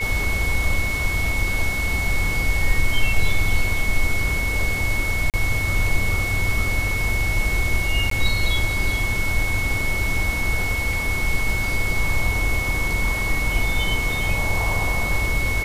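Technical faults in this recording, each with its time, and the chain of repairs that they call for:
whine 2.2 kHz -24 dBFS
5.30–5.34 s: dropout 38 ms
8.10–8.11 s: dropout 13 ms
10.93 s: dropout 2.4 ms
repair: band-stop 2.2 kHz, Q 30; interpolate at 5.30 s, 38 ms; interpolate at 8.10 s, 13 ms; interpolate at 10.93 s, 2.4 ms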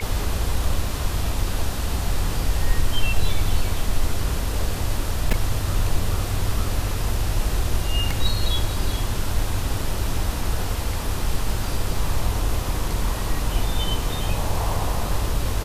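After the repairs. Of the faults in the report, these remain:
nothing left

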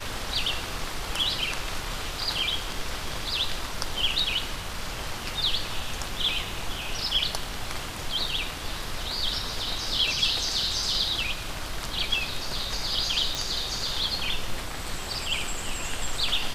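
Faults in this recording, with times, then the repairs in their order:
13.35 s: pop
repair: de-click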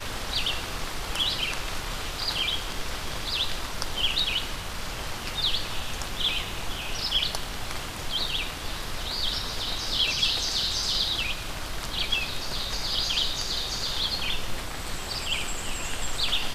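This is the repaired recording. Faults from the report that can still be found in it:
nothing left

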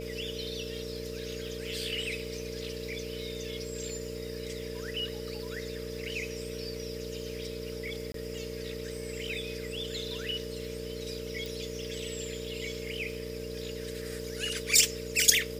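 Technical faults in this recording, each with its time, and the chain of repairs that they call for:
buzz 60 Hz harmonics 10 -41 dBFS
crackle 49 per s -44 dBFS
whine 450 Hz -39 dBFS
8.12–8.14 s: dropout 23 ms
11.46 s: pop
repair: de-click; de-hum 60 Hz, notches 10; band-stop 450 Hz, Q 30; interpolate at 8.12 s, 23 ms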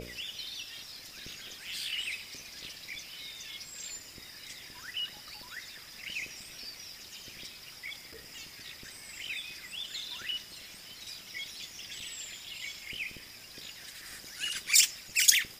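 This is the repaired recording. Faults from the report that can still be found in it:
nothing left

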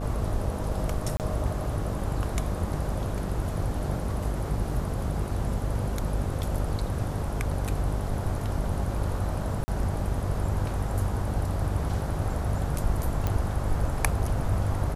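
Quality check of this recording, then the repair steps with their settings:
buzz 50 Hz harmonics 16 -32 dBFS
1.17–1.20 s: dropout 28 ms
9.64–9.68 s: dropout 40 ms
13.27 s: pop -14 dBFS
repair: de-click; de-hum 50 Hz, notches 16; interpolate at 1.17 s, 28 ms; interpolate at 9.64 s, 40 ms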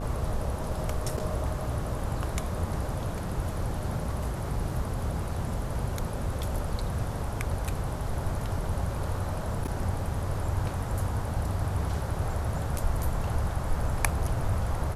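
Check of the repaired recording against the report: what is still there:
nothing left

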